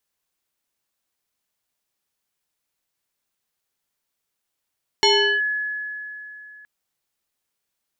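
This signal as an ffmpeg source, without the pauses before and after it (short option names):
-f lavfi -i "aevalsrc='0.251*pow(10,-3*t/3.17)*sin(2*PI*1700*t+2.8*clip(1-t/0.38,0,1)*sin(2*PI*0.76*1700*t))':d=1.62:s=44100"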